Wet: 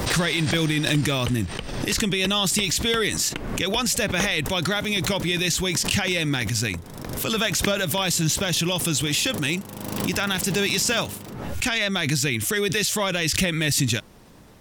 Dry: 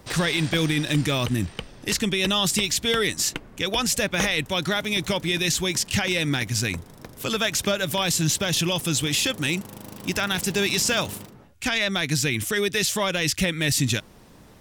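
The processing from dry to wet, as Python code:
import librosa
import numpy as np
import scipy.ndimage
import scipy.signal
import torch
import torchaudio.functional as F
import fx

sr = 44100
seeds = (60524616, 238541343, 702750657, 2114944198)

y = fx.pre_swell(x, sr, db_per_s=40.0)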